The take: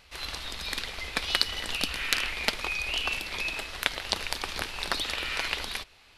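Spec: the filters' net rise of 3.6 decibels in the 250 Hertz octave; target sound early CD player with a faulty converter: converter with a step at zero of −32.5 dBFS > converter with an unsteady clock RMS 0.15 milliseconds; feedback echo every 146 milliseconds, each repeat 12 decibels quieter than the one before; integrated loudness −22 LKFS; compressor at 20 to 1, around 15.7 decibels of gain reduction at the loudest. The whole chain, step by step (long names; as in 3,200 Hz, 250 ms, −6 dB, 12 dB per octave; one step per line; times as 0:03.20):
parametric band 250 Hz +4.5 dB
downward compressor 20 to 1, threshold −37 dBFS
repeating echo 146 ms, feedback 25%, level −12 dB
converter with a step at zero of −32.5 dBFS
converter with an unsteady clock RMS 0.15 ms
level +11 dB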